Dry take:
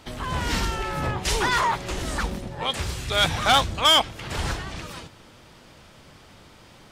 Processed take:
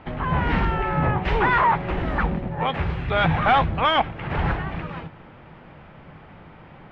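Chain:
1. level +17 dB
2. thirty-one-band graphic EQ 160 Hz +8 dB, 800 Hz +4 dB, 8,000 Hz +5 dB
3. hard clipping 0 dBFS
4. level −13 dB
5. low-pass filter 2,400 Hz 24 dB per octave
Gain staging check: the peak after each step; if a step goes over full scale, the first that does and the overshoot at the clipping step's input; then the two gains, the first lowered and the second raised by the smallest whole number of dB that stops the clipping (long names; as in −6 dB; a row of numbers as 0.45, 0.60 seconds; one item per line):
+4.5, +8.0, 0.0, −13.0, −11.0 dBFS
step 1, 8.0 dB
step 1 +9 dB, step 4 −5 dB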